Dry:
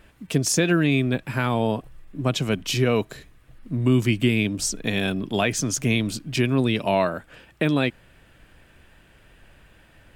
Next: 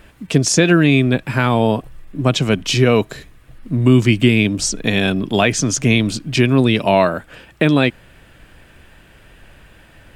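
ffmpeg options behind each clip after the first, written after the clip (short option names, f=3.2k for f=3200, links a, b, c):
-filter_complex "[0:a]acrossover=split=9200[a][b];[b]acompressor=threshold=-59dB:ratio=4:attack=1:release=60[c];[a][c]amix=inputs=2:normalize=0,volume=7.5dB"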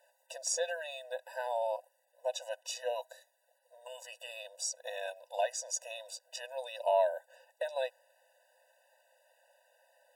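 -af "equalizer=f=2.2k:t=o:w=2:g=-14,bandreject=f=780:w=24,afftfilt=real='re*eq(mod(floor(b*sr/1024/500),2),1)':imag='im*eq(mod(floor(b*sr/1024/500),2),1)':win_size=1024:overlap=0.75,volume=-9dB"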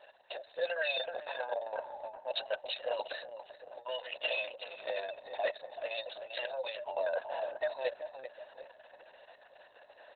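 -filter_complex "[0:a]areverse,acompressor=threshold=-44dB:ratio=5,areverse,asplit=2[a][b];[b]adelay=383,lowpass=f=2k:p=1,volume=-6dB,asplit=2[c][d];[d]adelay=383,lowpass=f=2k:p=1,volume=0.41,asplit=2[e][f];[f]adelay=383,lowpass=f=2k:p=1,volume=0.41,asplit=2[g][h];[h]adelay=383,lowpass=f=2k:p=1,volume=0.41,asplit=2[i][j];[j]adelay=383,lowpass=f=2k:p=1,volume=0.41[k];[a][c][e][g][i][k]amix=inputs=6:normalize=0,volume=13dB" -ar 48000 -c:a libopus -b:a 6k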